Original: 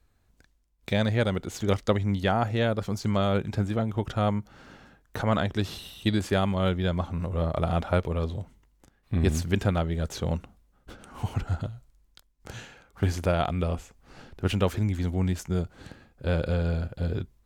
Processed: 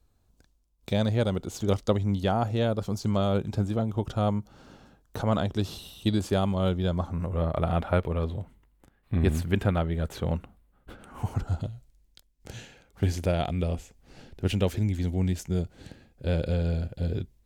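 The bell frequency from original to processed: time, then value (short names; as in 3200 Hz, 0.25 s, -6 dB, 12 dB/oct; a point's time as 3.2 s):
bell -9.5 dB 0.97 oct
6.87 s 1900 Hz
7.45 s 5900 Hz
11.05 s 5900 Hz
11.7 s 1200 Hz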